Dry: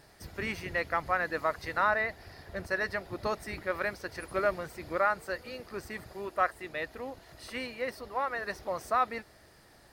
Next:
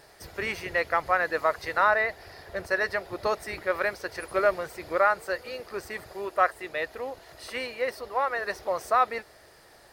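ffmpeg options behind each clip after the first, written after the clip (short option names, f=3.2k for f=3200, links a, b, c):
-af "lowshelf=f=330:t=q:w=1.5:g=-6,volume=4.5dB"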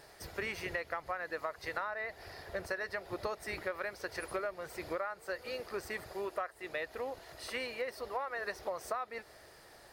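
-af "acompressor=threshold=-31dB:ratio=16,volume=-2.5dB"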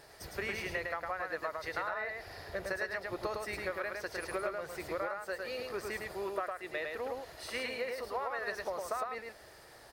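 -af "aecho=1:1:107:0.668"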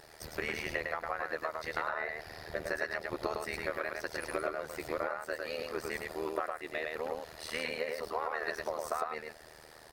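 -af "tremolo=f=78:d=0.919,volume=5dB"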